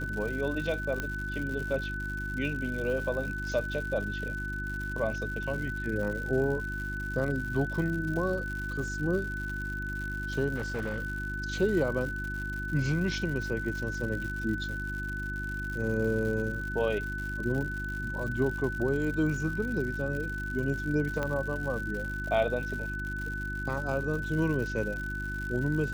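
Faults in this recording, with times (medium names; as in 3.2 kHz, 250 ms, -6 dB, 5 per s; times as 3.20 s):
crackle 160 per s -36 dBFS
hum 50 Hz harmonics 7 -37 dBFS
whine 1.5 kHz -35 dBFS
1.00 s: pop -18 dBFS
10.55–11.04 s: clipped -28.5 dBFS
21.23 s: pop -18 dBFS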